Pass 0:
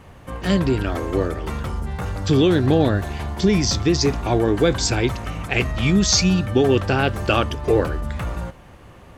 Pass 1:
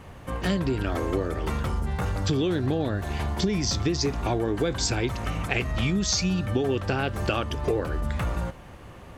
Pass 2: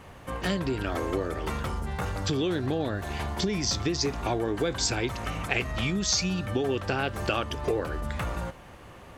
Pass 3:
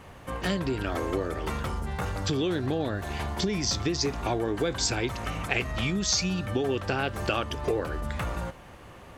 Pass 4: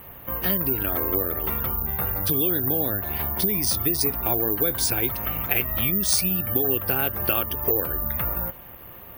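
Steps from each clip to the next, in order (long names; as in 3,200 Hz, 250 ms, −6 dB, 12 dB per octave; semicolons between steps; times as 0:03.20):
downward compressor, threshold −22 dBFS, peak gain reduction 10.5 dB
low-shelf EQ 300 Hz −5.5 dB
no processing that can be heard
bad sample-rate conversion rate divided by 3×, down filtered, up zero stuff; gate on every frequency bin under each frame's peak −30 dB strong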